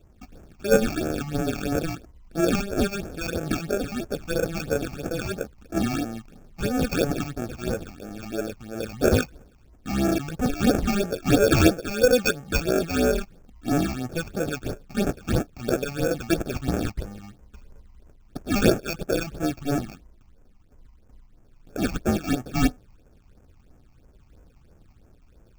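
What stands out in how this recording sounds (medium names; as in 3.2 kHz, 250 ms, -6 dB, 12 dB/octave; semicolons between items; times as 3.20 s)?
aliases and images of a low sample rate 1 kHz, jitter 0%; phasing stages 8, 3 Hz, lowest notch 450–4100 Hz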